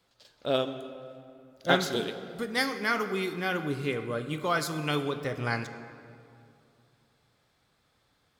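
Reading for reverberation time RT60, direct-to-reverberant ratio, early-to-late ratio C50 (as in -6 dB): 2.6 s, 9.0 dB, 10.5 dB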